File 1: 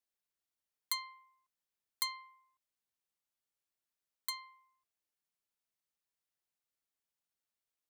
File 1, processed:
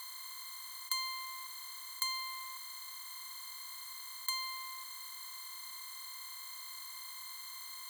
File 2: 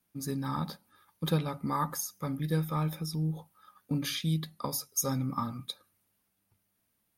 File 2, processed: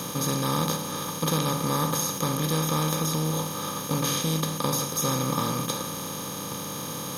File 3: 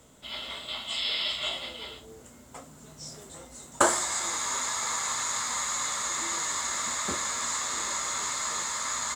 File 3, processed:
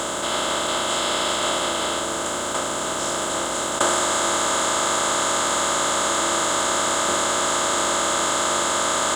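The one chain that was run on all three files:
compressor on every frequency bin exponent 0.2
level −2 dB

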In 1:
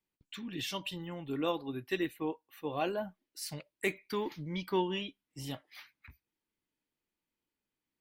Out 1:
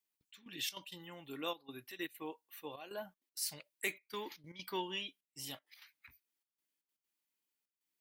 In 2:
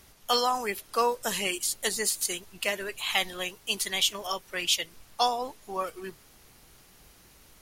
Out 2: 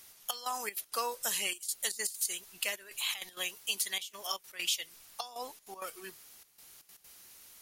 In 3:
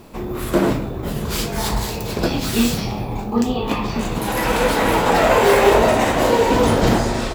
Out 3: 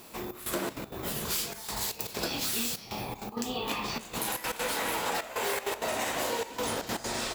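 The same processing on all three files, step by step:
spectral tilt +3 dB per octave
downward compressor 4 to 1, threshold −24 dBFS
gate pattern "xxxx..xxx.x.xxxx" 196 BPM −12 dB
level −5.5 dB

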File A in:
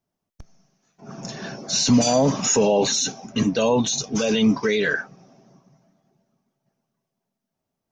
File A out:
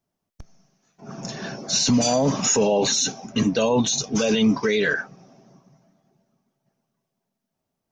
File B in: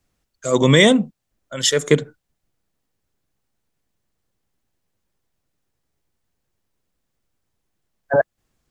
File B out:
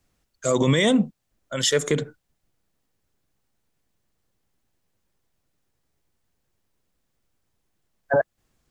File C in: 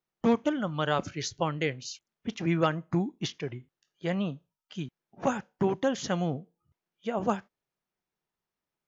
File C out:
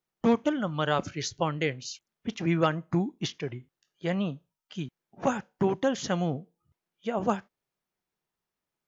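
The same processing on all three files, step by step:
brickwall limiter −12 dBFS
level +1 dB

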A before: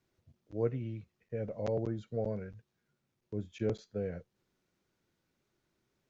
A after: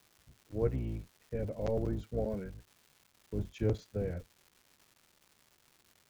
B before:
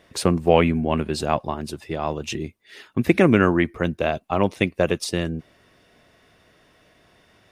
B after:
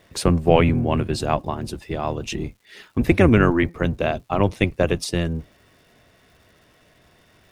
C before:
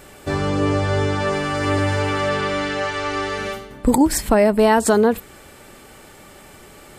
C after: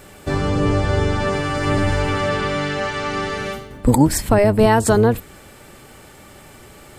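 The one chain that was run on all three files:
sub-octave generator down 1 octave, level −1 dB
surface crackle 390 per second −50 dBFS

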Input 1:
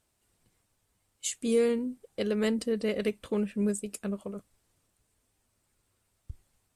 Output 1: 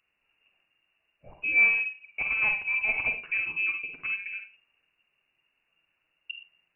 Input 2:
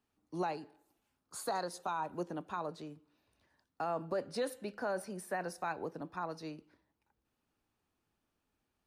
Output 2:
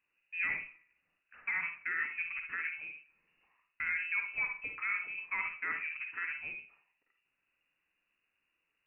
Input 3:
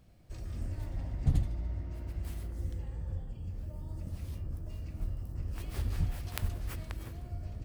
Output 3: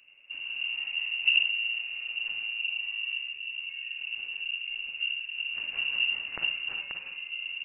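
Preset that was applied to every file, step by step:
four-comb reverb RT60 0.32 s, DRR 4 dB
voice inversion scrambler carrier 2,800 Hz

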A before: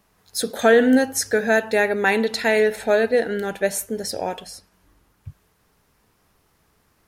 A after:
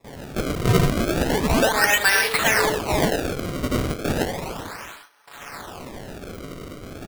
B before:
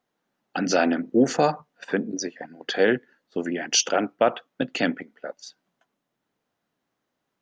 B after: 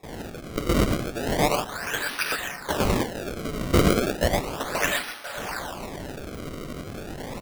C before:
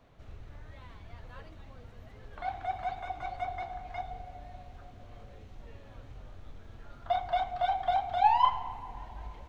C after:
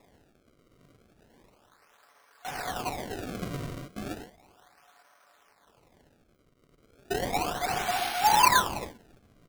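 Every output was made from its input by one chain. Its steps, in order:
linear delta modulator 64 kbit/s, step −29 dBFS
dynamic equaliser 4,700 Hz, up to +5 dB, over −49 dBFS, Q 3.2
noise gate with hold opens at −30 dBFS
parametric band 2,300 Hz −4 dB 1 octave
bit reduction 11 bits
low-pass that shuts in the quiet parts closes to 1,800 Hz, open at −20.5 dBFS
high-pass filter 1,200 Hz 12 dB per octave
comb filter 7 ms, depth 50%
reverb whose tail is shaped and stops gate 140 ms rising, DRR 0 dB
sample-and-hold swept by an LFO 29×, swing 160% 0.34 Hz
level +4.5 dB

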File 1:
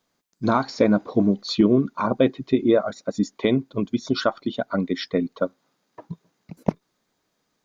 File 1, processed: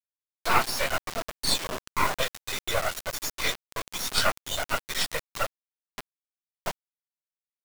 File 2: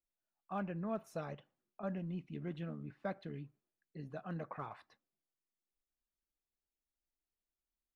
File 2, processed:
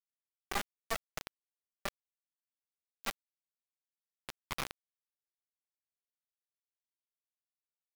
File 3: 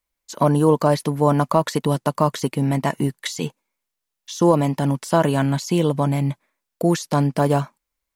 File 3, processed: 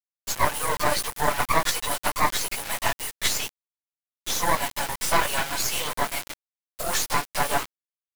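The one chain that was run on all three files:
random phases in long frames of 50 ms
Bessel high-pass filter 1,100 Hz, order 6
high-shelf EQ 11,000 Hz +6.5 dB
in parallel at +2 dB: downward compressor 8 to 1, threshold −40 dBFS
on the sum: half-wave rectification
bit reduction 6 bits
level +6.5 dB

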